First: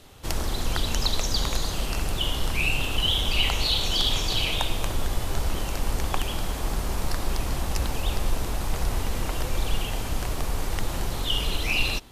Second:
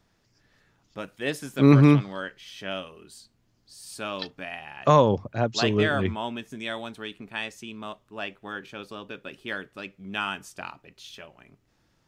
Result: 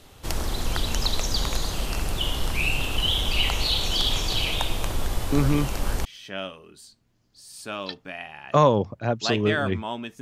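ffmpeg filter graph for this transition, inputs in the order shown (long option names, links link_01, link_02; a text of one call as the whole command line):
ffmpeg -i cue0.wav -i cue1.wav -filter_complex "[1:a]asplit=2[link_01][link_02];[0:a]apad=whole_dur=10.21,atrim=end=10.21,atrim=end=6.052[link_03];[link_02]atrim=start=2.378:end=6.54[link_04];[link_01]atrim=start=1.65:end=2.38,asetpts=PTS-STARTPTS,volume=-7dB,afade=type=in:duration=0.004:curve=hsin,afade=type=out:start_time=0.726:duration=0.004:curve=hsin,adelay=5320[link_05];[link_03][link_04]acrossfade=duration=0.004:curve1=hsin:curve2=hsin[link_06];[link_06][link_05]amix=inputs=2:normalize=0" out.wav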